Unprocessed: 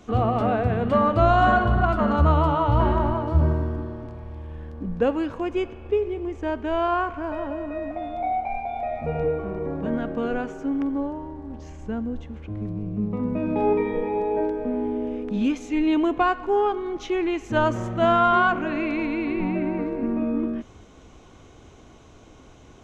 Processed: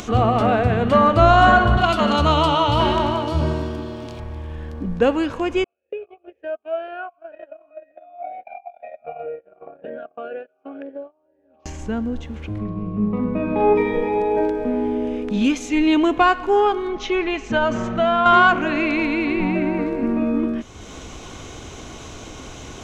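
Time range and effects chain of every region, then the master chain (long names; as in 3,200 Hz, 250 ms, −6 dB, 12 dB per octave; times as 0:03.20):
0:01.77–0:04.20: high-pass filter 160 Hz 6 dB per octave + high shelf with overshoot 2,300 Hz +7.5 dB, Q 1.5
0:05.64–0:11.66: noise gate −27 dBFS, range −30 dB + high-frequency loss of the air 130 metres + formant filter swept between two vowels a-e 2 Hz
0:12.58–0:13.74: high-frequency loss of the air 250 metres + steady tone 1,100 Hz −47 dBFS + double-tracking delay 43 ms −9 dB
0:16.88–0:18.26: high-frequency loss of the air 120 metres + comb filter 4.6 ms, depth 53% + downward compressor 4 to 1, threshold −20 dBFS
whole clip: high-shelf EQ 2,000 Hz +8.5 dB; upward compression, threshold −31 dBFS; level +4 dB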